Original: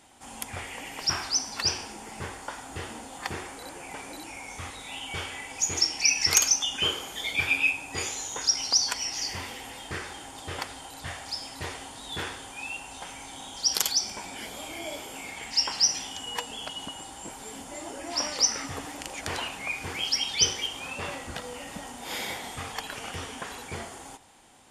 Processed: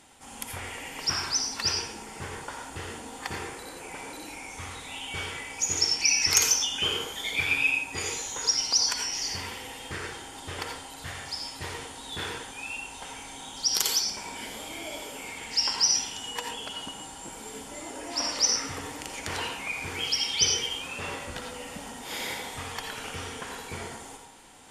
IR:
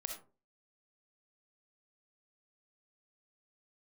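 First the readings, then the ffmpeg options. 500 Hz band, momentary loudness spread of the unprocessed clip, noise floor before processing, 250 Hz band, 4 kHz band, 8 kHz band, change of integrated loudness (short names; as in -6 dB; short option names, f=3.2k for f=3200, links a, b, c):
+0.5 dB, 17 LU, -44 dBFS, 0.0 dB, +0.5 dB, +0.5 dB, 0.0 dB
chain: -filter_complex "[0:a]equalizer=f=690:t=o:w=0.83:g=-2.5,areverse,acompressor=mode=upward:threshold=-46dB:ratio=2.5,areverse[a];[1:a]atrim=start_sample=2205,asetrate=31752,aresample=44100[b];[a][b]afir=irnorm=-1:irlink=0"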